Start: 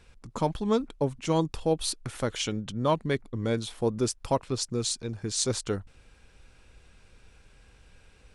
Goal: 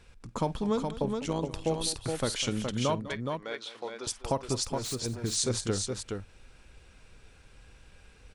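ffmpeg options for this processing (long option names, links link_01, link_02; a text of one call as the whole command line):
ffmpeg -i in.wav -filter_complex "[0:a]acompressor=threshold=-24dB:ratio=6,asettb=1/sr,asplit=3[link_01][link_02][link_03];[link_01]atrim=end=1.024[link_04];[link_02]atrim=start=1.02:end=1.67,asetpts=PTS-STARTPTS,afade=type=in:duration=0.004:curve=qsin,afade=type=out:start_time=0.646:duration=0.004:curve=qsin,tremolo=f=100:d=0.667[link_05];[link_03]atrim=start=1.666[link_06];[link_04][link_05]acrossfade=duration=0.004:curve1=hsin:curve2=qsin[link_07];[link_07][link_06]acrossfade=duration=0.004:curve1=qsin:curve2=hsin,asettb=1/sr,asplit=3[link_08][link_09][link_10];[link_08]atrim=end=3.014[link_11];[link_09]atrim=start=3.01:end=4.07,asetpts=PTS-STARTPTS,afade=type=in:duration=0.004:curve=qsin,afade=type=out:start_time=1.056:duration=0.004:curve=qsin,highpass=710,lowpass=4400[link_12];[link_10]atrim=start=4.066[link_13];[link_11][link_12]acrossfade=duration=0.004:curve1=hsin:curve2=qsin[link_14];[link_14][link_13]acrossfade=duration=0.004:curve1=qsin:curve2=hsin,asettb=1/sr,asplit=3[link_15][link_16][link_17];[link_15]atrim=end=4.644[link_18];[link_16]atrim=start=4.64:end=5.06,asetpts=PTS-STARTPTS,afade=type=in:duration=0.004:curve=qsin,afade=type=out:start_time=0.416:duration=0.004:curve=qsin,volume=34.5dB,asoftclip=hard,volume=-34.5dB[link_19];[link_17]atrim=start=5.056[link_20];[link_18][link_19]acrossfade=duration=0.004:curve1=hsin:curve2=qsin[link_21];[link_21][link_20]acrossfade=duration=0.004:curve1=qsin:curve2=hsin,aecho=1:1:51|201|419:0.106|0.168|0.562" out.wav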